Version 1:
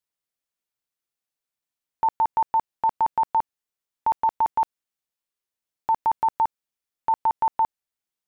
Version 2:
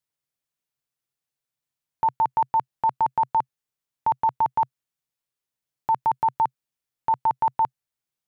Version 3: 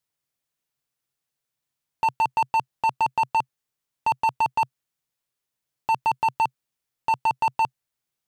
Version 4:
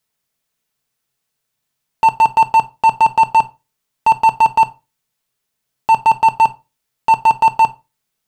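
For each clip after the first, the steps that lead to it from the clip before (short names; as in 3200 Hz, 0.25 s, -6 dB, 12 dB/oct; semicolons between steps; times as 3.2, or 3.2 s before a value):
bell 130 Hz +11.5 dB 0.55 oct
overloaded stage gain 21.5 dB; gain +3.5 dB
reverb, pre-delay 5 ms, DRR 7.5 dB; gain +8 dB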